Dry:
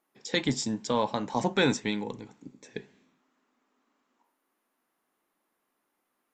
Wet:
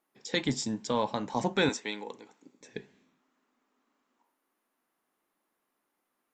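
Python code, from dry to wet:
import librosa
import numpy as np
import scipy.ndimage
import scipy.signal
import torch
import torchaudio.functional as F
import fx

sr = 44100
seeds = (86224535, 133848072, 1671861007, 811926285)

y = fx.highpass(x, sr, hz=400.0, slope=12, at=(1.69, 2.61))
y = y * librosa.db_to_amplitude(-2.0)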